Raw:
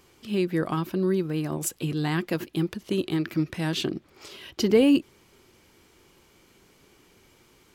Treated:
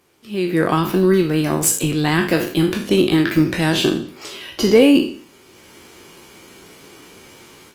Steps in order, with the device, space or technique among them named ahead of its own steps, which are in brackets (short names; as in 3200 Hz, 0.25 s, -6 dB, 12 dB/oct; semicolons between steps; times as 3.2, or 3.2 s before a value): spectral trails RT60 0.48 s; 3.71–4.68 dynamic EQ 4900 Hz, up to -6 dB, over -43 dBFS, Q 0.98; video call (HPF 160 Hz 6 dB/oct; AGC gain up to 15 dB; gain -1 dB; Opus 24 kbps 48000 Hz)